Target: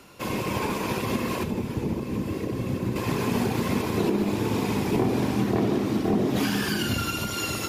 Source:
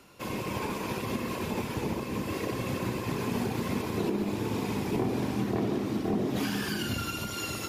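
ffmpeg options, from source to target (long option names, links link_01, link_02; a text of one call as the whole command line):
ffmpeg -i in.wav -filter_complex "[0:a]asettb=1/sr,asplit=3[link_01][link_02][link_03];[link_01]atrim=end=1.434[link_04];[link_02]atrim=start=1.43:end=2.96,asetpts=PTS-STARTPTS,afade=type=in:duration=0.004:curve=qsin,afade=type=out:start_time=1.526:duration=0.004:curve=qsin,acrossover=split=430[link_05][link_06];[link_06]acompressor=threshold=-48dB:ratio=3[link_07];[link_05][link_07]amix=inputs=2:normalize=0[link_08];[link_03]atrim=start=2.956[link_09];[link_04][link_08]acrossfade=duration=0.004:curve1=hsin:curve2=qsin[link_10];[link_10][link_09]acrossfade=duration=0.004:curve1=qsin:curve2=hsin,volume=5.5dB" out.wav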